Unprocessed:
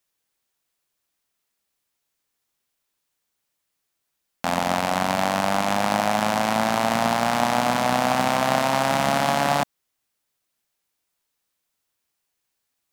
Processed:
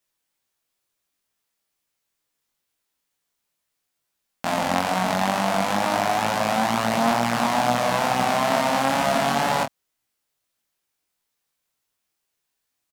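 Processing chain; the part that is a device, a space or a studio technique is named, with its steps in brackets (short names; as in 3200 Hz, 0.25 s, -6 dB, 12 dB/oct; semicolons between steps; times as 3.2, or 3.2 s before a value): double-tracked vocal (doubler 26 ms -7.5 dB; chorus 2.2 Hz, delay 16 ms, depth 6.2 ms); gain +2 dB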